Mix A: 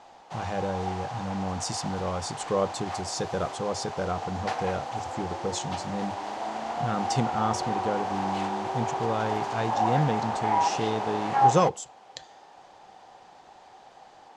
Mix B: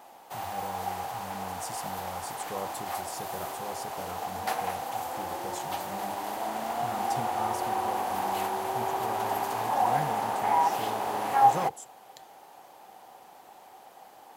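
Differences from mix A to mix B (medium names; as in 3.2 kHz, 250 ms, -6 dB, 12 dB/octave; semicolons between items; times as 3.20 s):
speech -12.0 dB; master: remove low-pass 6.7 kHz 24 dB/octave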